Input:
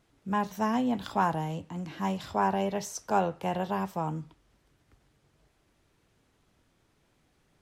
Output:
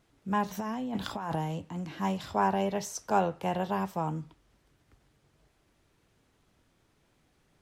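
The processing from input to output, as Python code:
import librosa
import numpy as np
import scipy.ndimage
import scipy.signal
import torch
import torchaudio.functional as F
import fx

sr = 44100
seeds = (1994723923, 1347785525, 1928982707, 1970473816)

y = fx.over_compress(x, sr, threshold_db=-32.0, ratio=-1.0, at=(0.47, 1.36), fade=0.02)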